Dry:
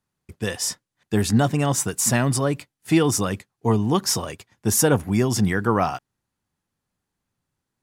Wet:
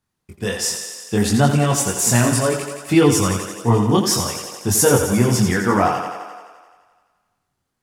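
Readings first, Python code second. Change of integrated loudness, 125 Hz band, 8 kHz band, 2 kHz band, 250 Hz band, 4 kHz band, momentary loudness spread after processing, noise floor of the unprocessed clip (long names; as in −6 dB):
+4.0 dB, +4.0 dB, +4.5 dB, +4.5 dB, +4.0 dB, +4.5 dB, 11 LU, −82 dBFS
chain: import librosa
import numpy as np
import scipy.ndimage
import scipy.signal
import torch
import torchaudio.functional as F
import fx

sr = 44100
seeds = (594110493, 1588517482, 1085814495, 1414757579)

y = fx.echo_thinned(x, sr, ms=86, feedback_pct=71, hz=190.0, wet_db=-7.0)
y = fx.chorus_voices(y, sr, voices=2, hz=0.66, base_ms=23, depth_ms=2.5, mix_pct=45)
y = y * librosa.db_to_amplitude(6.0)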